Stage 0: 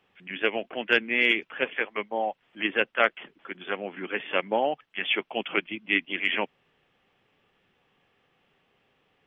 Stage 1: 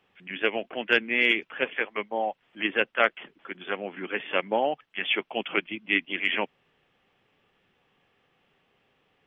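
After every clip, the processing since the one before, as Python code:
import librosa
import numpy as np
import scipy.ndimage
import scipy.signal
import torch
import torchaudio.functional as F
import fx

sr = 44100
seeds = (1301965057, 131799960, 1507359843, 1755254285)

y = x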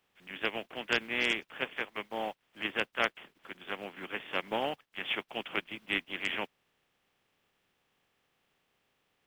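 y = fx.spec_flatten(x, sr, power=0.55)
y = F.gain(torch.from_numpy(y), -7.5).numpy()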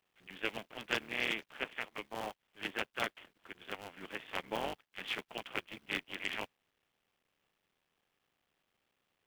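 y = fx.cycle_switch(x, sr, every=3, mode='muted')
y = F.gain(torch.from_numpy(y), -3.5).numpy()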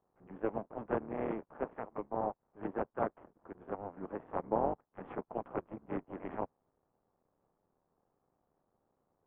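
y = scipy.signal.sosfilt(scipy.signal.butter(4, 1000.0, 'lowpass', fs=sr, output='sos'), x)
y = F.gain(torch.from_numpy(y), 7.0).numpy()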